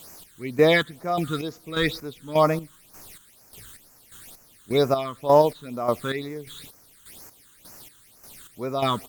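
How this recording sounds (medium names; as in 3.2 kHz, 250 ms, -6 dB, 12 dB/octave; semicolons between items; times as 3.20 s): a quantiser's noise floor 8-bit, dither triangular; phasing stages 8, 2.1 Hz, lowest notch 670–3500 Hz; chopped level 1.7 Hz, depth 65%, duty 40%; Opus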